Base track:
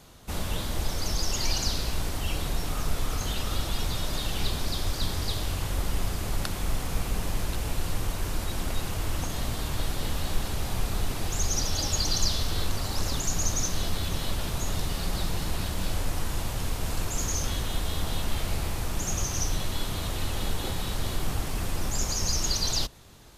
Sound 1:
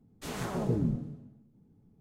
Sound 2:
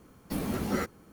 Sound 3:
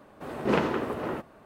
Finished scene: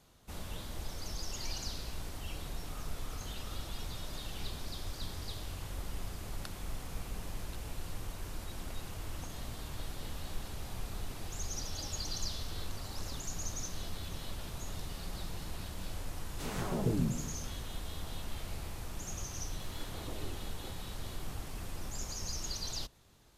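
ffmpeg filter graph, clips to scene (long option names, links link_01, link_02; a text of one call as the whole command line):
ffmpeg -i bed.wav -i cue0.wav -filter_complex "[1:a]asplit=2[link_01][link_02];[0:a]volume=-12dB[link_03];[link_02]aeval=exprs='abs(val(0))':channel_layout=same[link_04];[link_01]atrim=end=2,asetpts=PTS-STARTPTS,volume=-2.5dB,afade=type=in:duration=0.004:curve=hsin,afade=type=out:start_time=1.996:duration=0.004:curve=hsin,adelay=16170[link_05];[link_04]atrim=end=2,asetpts=PTS-STARTPTS,volume=-13dB,afade=type=in:duration=0.004:curve=hsin,afade=type=out:start_time=1.996:duration=0.004:curve=hsin,adelay=19390[link_06];[link_03][link_05][link_06]amix=inputs=3:normalize=0" out.wav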